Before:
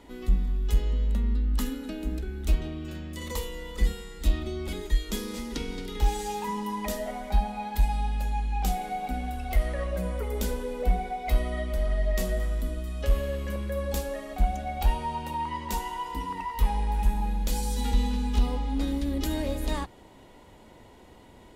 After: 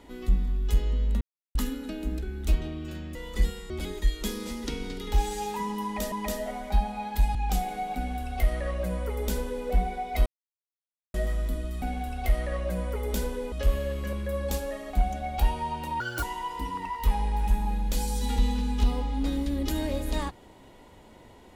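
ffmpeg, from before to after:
ffmpeg -i in.wav -filter_complex "[0:a]asplit=13[link_01][link_02][link_03][link_04][link_05][link_06][link_07][link_08][link_09][link_10][link_11][link_12][link_13];[link_01]atrim=end=1.21,asetpts=PTS-STARTPTS,afade=type=out:start_time=1.206:duration=0.004:curve=hsin[link_14];[link_02]atrim=start=1.21:end=1.55,asetpts=PTS-STARTPTS,volume=0[link_15];[link_03]atrim=start=1.55:end=3.152,asetpts=PTS-STARTPTS,afade=type=in:duration=0.004:curve=hsin[link_16];[link_04]atrim=start=3.568:end=4.122[link_17];[link_05]atrim=start=4.578:end=7.002[link_18];[link_06]atrim=start=6.718:end=7.952[link_19];[link_07]atrim=start=8.478:end=11.39,asetpts=PTS-STARTPTS,afade=type=out:start_time=2.908:duration=0.004:curve=hsin[link_20];[link_08]atrim=start=11.39:end=12.27,asetpts=PTS-STARTPTS,volume=0[link_21];[link_09]atrim=start=12.27:end=12.952,asetpts=PTS-STARTPTS,afade=type=in:duration=0.004:curve=hsin[link_22];[link_10]atrim=start=9.088:end=10.792[link_23];[link_11]atrim=start=12.948:end=15.434[link_24];[link_12]atrim=start=15.43:end=15.78,asetpts=PTS-STARTPTS,asetrate=67914,aresample=44100[link_25];[link_13]atrim=start=15.776[link_26];[link_14][link_15][link_16]concat=n=3:v=0:a=1[link_27];[link_27][link_17]acrossfade=duration=0.004:curve1=hsin:curve2=hsin[link_28];[link_28][link_18]acrossfade=duration=0.004:curve1=hsin:curve2=hsin[link_29];[link_29][link_19]acrossfade=duration=0.004:curve1=hsin:curve2=hsin[link_30];[link_20][link_21][link_22]concat=n=3:v=0:a=1[link_31];[link_30][link_31]acrossfade=duration=0.004:curve1=hsin:curve2=hsin[link_32];[link_32][link_23]acrossfade=duration=0.004:curve1=hsin:curve2=hsin[link_33];[link_33][link_24]acrossfade=duration=0.004:curve1=hsin:curve2=hsin[link_34];[link_34][link_25]acrossfade=duration=0.004:curve1=hsin:curve2=hsin[link_35];[link_35][link_26]acrossfade=duration=0.004:curve1=hsin:curve2=hsin" out.wav

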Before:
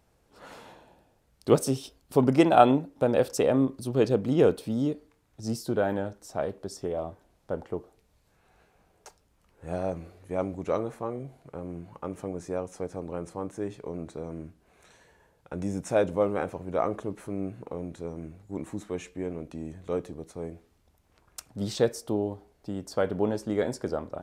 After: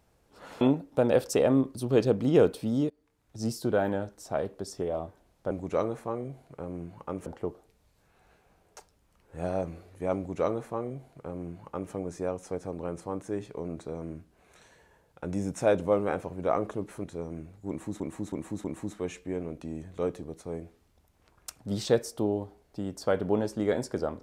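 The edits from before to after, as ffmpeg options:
ffmpeg -i in.wav -filter_complex "[0:a]asplit=9[link_01][link_02][link_03][link_04][link_05][link_06][link_07][link_08][link_09];[link_01]atrim=end=0.612[link_10];[link_02]atrim=start=2.648:end=4.94,asetpts=PTS-STARTPTS,afade=type=out:start_time=2.288:duration=0.004:curve=hsin:silence=0.0707946[link_11];[link_03]atrim=start=4.94:end=7.552,asetpts=PTS-STARTPTS,afade=type=in:duration=0.49:silence=0.0707946[link_12];[link_04]atrim=start=10.458:end=12.212[link_13];[link_05]atrim=start=7.548:end=17.332[link_14];[link_06]atrim=start=17.898:end=18.862[link_15];[link_07]atrim=start=18.538:end=18.862[link_16];[link_08]atrim=start=18.538:end=18.862[link_17];[link_09]atrim=start=18.538[link_18];[link_11][link_12]concat=n=2:v=0:a=1[link_19];[link_10][link_19]acrossfade=duration=0.004:curve1=hsin:curve2=hsin[link_20];[link_20][link_13]acrossfade=duration=0.004:curve1=hsin:curve2=hsin[link_21];[link_21][link_14]acrossfade=duration=0.004:curve1=hsin:curve2=hsin[link_22];[link_22][link_15]acrossfade=duration=0.004:curve1=hsin:curve2=hsin[link_23];[link_23][link_16]acrossfade=duration=0.004:curve1=hsin:curve2=hsin[link_24];[link_24][link_17]acrossfade=duration=0.004:curve1=hsin:curve2=hsin[link_25];[link_25][link_18]acrossfade=duration=0.004:curve1=hsin:curve2=hsin" out.wav

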